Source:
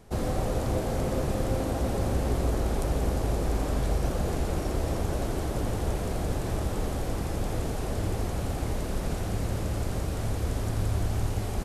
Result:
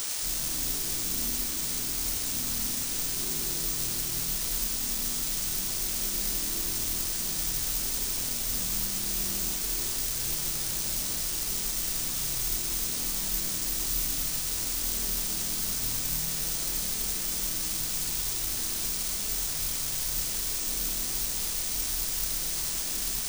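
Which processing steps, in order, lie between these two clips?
brickwall limiter −23.5 dBFS, peak gain reduction 9 dB
multi-voice chorus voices 6, 0.26 Hz, delay 15 ms, depth 2.3 ms
tuned comb filter 79 Hz, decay 1.5 s, harmonics all, mix 90%
wrong playback speed 15 ips tape played at 7.5 ips
in parallel at −7 dB: bit-depth reduction 6 bits, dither triangular
on the sum: bass and treble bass −1 dB, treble +12 dB
bad sample-rate conversion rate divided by 3×, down filtered, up zero stuff
level +4.5 dB

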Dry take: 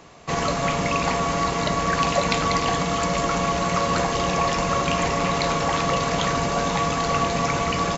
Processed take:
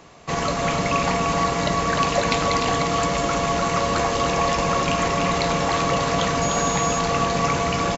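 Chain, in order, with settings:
single-tap delay 300 ms −6 dB
0:06.41–0:06.98: steady tone 6,700 Hz −28 dBFS

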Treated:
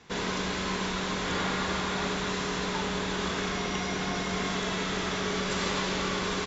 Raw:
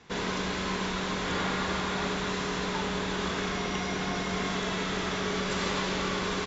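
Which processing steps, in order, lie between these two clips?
high-shelf EQ 5,800 Hz +4 dB

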